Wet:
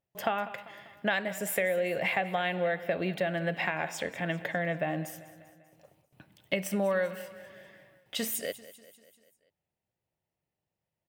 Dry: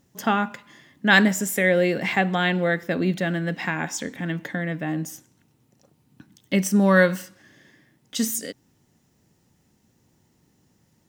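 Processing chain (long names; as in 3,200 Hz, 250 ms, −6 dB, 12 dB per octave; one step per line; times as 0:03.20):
noise gate with hold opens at −51 dBFS
graphic EQ with 15 bands 250 Hz −11 dB, 630 Hz +11 dB, 2,500 Hz +7 dB, 6,300 Hz −10 dB
downward compressor 8 to 1, threshold −23 dBFS, peak gain reduction 15.5 dB
on a send: repeating echo 196 ms, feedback 56%, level −17 dB
on the sum: level −3 dB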